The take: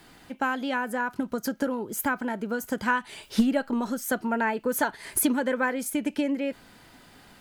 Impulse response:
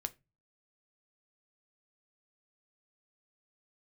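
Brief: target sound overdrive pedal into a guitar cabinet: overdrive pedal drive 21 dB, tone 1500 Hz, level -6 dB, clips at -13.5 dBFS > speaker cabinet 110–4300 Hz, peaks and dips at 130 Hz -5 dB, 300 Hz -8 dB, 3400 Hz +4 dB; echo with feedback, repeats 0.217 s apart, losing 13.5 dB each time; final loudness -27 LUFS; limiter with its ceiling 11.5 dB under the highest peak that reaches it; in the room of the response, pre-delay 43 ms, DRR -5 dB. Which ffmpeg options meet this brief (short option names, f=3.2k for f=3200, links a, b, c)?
-filter_complex "[0:a]alimiter=limit=-24dB:level=0:latency=1,aecho=1:1:217|434:0.211|0.0444,asplit=2[a][b];[1:a]atrim=start_sample=2205,adelay=43[c];[b][c]afir=irnorm=-1:irlink=0,volume=6dB[d];[a][d]amix=inputs=2:normalize=0,asplit=2[e][f];[f]highpass=f=720:p=1,volume=21dB,asoftclip=type=tanh:threshold=-13.5dB[g];[e][g]amix=inputs=2:normalize=0,lowpass=f=1.5k:p=1,volume=-6dB,highpass=110,equalizer=f=130:t=q:w=4:g=-5,equalizer=f=300:t=q:w=4:g=-8,equalizer=f=3.4k:t=q:w=4:g=4,lowpass=f=4.3k:w=0.5412,lowpass=f=4.3k:w=1.3066,volume=-2.5dB"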